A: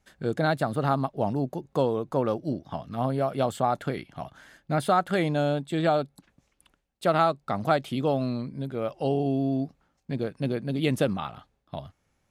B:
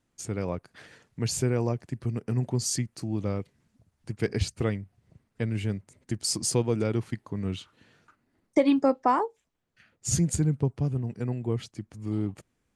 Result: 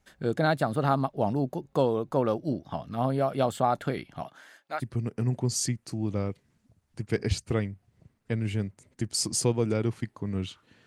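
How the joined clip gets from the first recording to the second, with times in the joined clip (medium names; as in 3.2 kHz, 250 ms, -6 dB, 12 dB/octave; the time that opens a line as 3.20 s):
A
4.22–4.84 s: high-pass 180 Hz -> 1.1 kHz
4.80 s: go over to B from 1.90 s, crossfade 0.08 s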